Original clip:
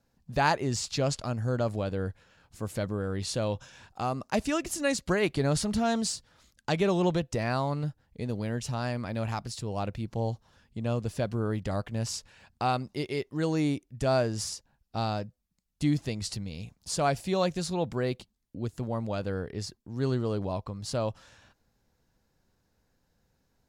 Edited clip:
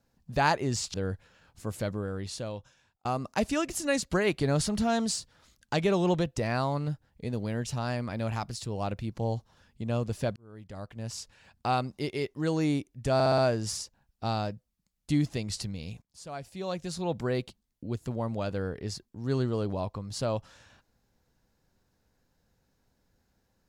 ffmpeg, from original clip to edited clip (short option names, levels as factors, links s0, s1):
-filter_complex "[0:a]asplit=9[s0][s1][s2][s3][s4][s5][s6][s7][s8];[s0]atrim=end=0.942[s9];[s1]atrim=start=1.898:end=4.01,asetpts=PTS-STARTPTS,afade=t=out:st=0.842:d=1.27[s10];[s2]atrim=start=4.01:end=11.32,asetpts=PTS-STARTPTS,afade=t=in:d=0.004:c=hsin,afade=t=out:st=7.306:d=0.004:c=hsin[s11];[s3]atrim=start=11.32:end=14.162,asetpts=PTS-STARTPTS,afade=t=in:d=1.36[s12];[s4]atrim=start=14.098:end=14.162[s13];[s5]atrim=start=14.098:end=14.162[s14];[s6]atrim=start=14.098:end=14.162[s15];[s7]atrim=start=14.098:end=16.74,asetpts=PTS-STARTPTS,afade=t=out:st=2.638:d=0.004:c=hsin:silence=0.149624[s16];[s8]atrim=start=16.74,asetpts=PTS-STARTPTS,afade=t=in:d=1.16:c=qua:silence=0.149624[s17];[s10][s11][s12]concat=n=3:v=0:a=1[s18];[s9][s18]acrossfade=d=0.004:c1=hsin:c2=hsin[s19];[s19][s13]acrossfade=d=0.004:c1=hsin:c2=hsin[s20];[s20][s14]acrossfade=d=0.004:c1=hsin:c2=hsin[s21];[s21][s15]acrossfade=d=0.004:c1=hsin:c2=hsin[s22];[s16][s17]concat=n=2:v=0:a=1[s23];[s22][s23]acrossfade=d=0.004:c1=hsin:c2=hsin"